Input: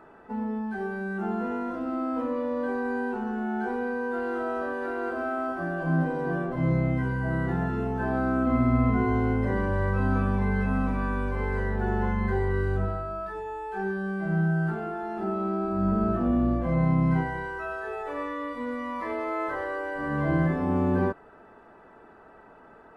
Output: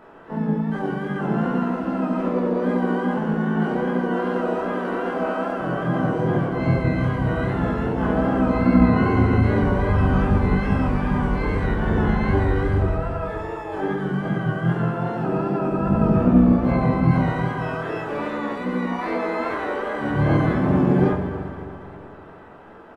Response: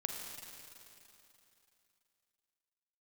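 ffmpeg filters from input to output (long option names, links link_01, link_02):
-filter_complex "[0:a]asplit=2[link_01][link_02];[link_02]adelay=367,lowpass=frequency=1700:poles=1,volume=-22.5dB,asplit=2[link_03][link_04];[link_04]adelay=367,lowpass=frequency=1700:poles=1,volume=0.3[link_05];[link_01][link_03][link_05]amix=inputs=3:normalize=0,flanger=delay=19.5:depth=7.2:speed=2.5,asplit=2[link_06][link_07];[1:a]atrim=start_sample=2205,adelay=28[link_08];[link_07][link_08]afir=irnorm=-1:irlink=0,volume=-1dB[link_09];[link_06][link_09]amix=inputs=2:normalize=0,asplit=4[link_10][link_11][link_12][link_13];[link_11]asetrate=33038,aresample=44100,atempo=1.33484,volume=-3dB[link_14];[link_12]asetrate=55563,aresample=44100,atempo=0.793701,volume=-13dB[link_15];[link_13]asetrate=88200,aresample=44100,atempo=0.5,volume=-16dB[link_16];[link_10][link_14][link_15][link_16]amix=inputs=4:normalize=0,volume=5dB"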